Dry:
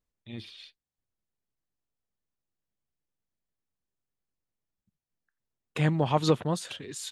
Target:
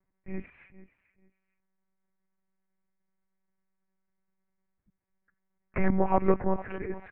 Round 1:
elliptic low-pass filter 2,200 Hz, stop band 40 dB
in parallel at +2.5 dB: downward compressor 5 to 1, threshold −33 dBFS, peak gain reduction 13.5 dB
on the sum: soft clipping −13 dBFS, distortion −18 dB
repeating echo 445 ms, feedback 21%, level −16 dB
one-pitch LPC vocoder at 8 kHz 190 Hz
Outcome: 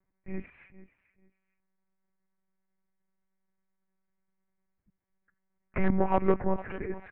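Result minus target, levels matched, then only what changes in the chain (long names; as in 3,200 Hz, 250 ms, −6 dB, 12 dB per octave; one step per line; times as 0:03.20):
soft clipping: distortion +10 dB
change: soft clipping −6.5 dBFS, distortion −28 dB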